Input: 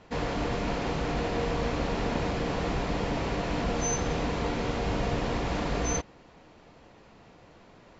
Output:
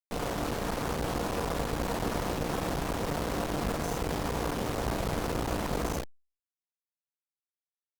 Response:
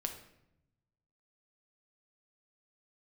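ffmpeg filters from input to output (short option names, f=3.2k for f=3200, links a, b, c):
-filter_complex "[0:a]afwtdn=0.0316,asoftclip=type=hard:threshold=-23.5dB,asplit=2[a][b];[b]lowshelf=f=150:g=-8[c];[1:a]atrim=start_sample=2205,atrim=end_sample=4410[d];[c][d]afir=irnorm=-1:irlink=0,volume=-6.5dB[e];[a][e]amix=inputs=2:normalize=0,asplit=2[f][g];[g]asetrate=52444,aresample=44100,atempo=0.840896,volume=-10dB[h];[f][h]amix=inputs=2:normalize=0,aecho=1:1:35|48:0.211|0.168,acrusher=bits=3:dc=4:mix=0:aa=0.000001" -ar 48000 -c:a libopus -b:a 96k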